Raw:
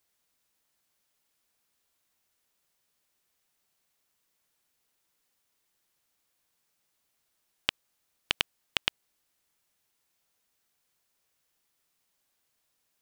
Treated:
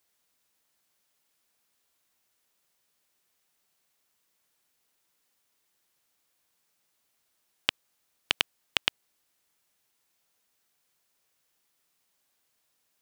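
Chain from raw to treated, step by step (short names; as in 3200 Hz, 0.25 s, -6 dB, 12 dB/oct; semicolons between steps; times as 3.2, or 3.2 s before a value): low shelf 93 Hz -6.5 dB; gain +2 dB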